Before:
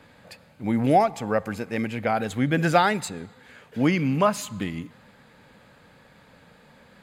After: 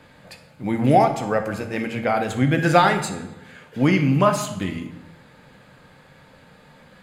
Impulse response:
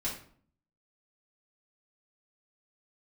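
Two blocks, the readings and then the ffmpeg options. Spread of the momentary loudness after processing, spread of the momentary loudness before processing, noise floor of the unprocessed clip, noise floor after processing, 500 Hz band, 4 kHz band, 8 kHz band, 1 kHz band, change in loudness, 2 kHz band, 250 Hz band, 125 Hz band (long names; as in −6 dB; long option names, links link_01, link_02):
16 LU, 16 LU, −55 dBFS, −51 dBFS, +3.5 dB, +3.5 dB, +3.0 dB, +3.5 dB, +3.5 dB, +3.5 dB, +3.0 dB, +5.5 dB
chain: -filter_complex "[0:a]asplit=2[link_01][link_02];[1:a]atrim=start_sample=2205,asetrate=24696,aresample=44100[link_03];[link_02][link_03]afir=irnorm=-1:irlink=0,volume=-10dB[link_04];[link_01][link_04]amix=inputs=2:normalize=0"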